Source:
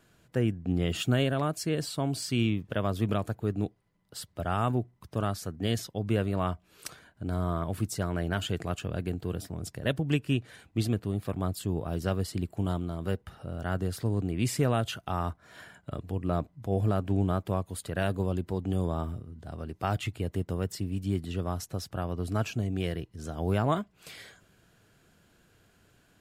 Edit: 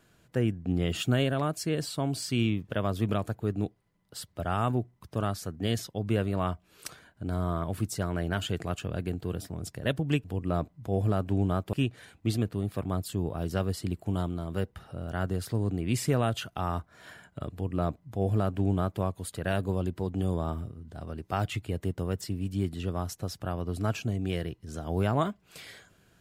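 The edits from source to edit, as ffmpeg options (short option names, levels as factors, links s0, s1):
-filter_complex "[0:a]asplit=3[s0][s1][s2];[s0]atrim=end=10.242[s3];[s1]atrim=start=16.028:end=17.522[s4];[s2]atrim=start=10.238[s5];[s3][s4]acrossfade=d=0.004:c1=hsin:c2=hsin[s6];[s6][s5]acrossfade=d=0.004:c1=hsin:c2=hsin"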